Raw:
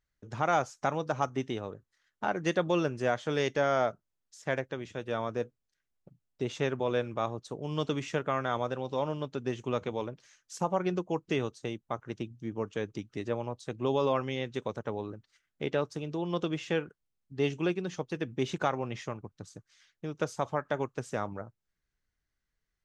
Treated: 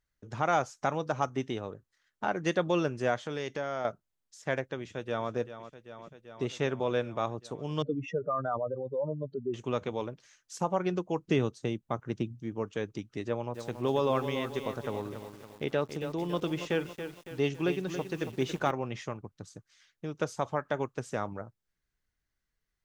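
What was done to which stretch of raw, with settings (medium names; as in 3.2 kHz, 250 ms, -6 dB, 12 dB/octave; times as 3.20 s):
3.16–3.85 s: compression 2:1, threshold -35 dBFS
4.81–5.30 s: echo throw 390 ms, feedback 80%, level -12 dB
7.82–9.54 s: spectral contrast enhancement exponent 2.9
11.19–12.40 s: peaking EQ 160 Hz +6 dB 2.6 oct
13.26–18.71 s: bit-crushed delay 279 ms, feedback 55%, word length 8-bit, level -9 dB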